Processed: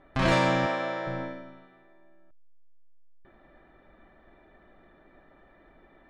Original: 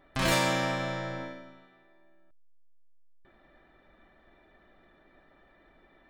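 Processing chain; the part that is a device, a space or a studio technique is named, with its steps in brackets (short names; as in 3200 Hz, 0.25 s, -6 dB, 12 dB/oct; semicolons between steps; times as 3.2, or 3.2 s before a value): through cloth (LPF 6900 Hz 12 dB/oct; high shelf 3200 Hz -12 dB); 0.66–1.07 HPF 320 Hz 12 dB/oct; gain +4.5 dB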